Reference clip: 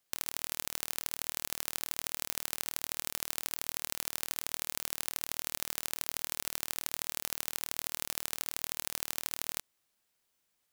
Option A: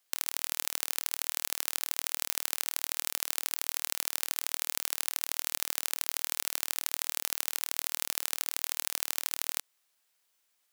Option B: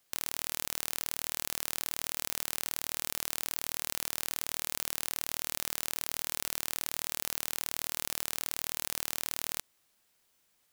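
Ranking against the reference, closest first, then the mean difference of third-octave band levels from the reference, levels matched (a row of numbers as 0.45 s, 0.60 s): B, A; 1.5 dB, 4.5 dB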